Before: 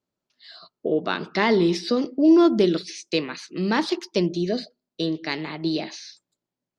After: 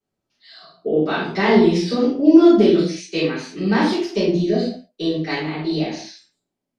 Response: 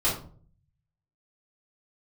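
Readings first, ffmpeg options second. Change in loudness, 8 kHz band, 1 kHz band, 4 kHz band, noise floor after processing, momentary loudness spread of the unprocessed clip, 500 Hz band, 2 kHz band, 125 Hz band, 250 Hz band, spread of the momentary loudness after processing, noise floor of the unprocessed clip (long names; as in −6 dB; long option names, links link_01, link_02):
+5.0 dB, can't be measured, +3.5 dB, +1.5 dB, −81 dBFS, 13 LU, +5.0 dB, +3.5 dB, +6.0 dB, +5.5 dB, 13 LU, below −85 dBFS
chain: -filter_complex "[1:a]atrim=start_sample=2205,atrim=end_sample=6615,asetrate=27342,aresample=44100[link_01];[0:a][link_01]afir=irnorm=-1:irlink=0,volume=-11dB"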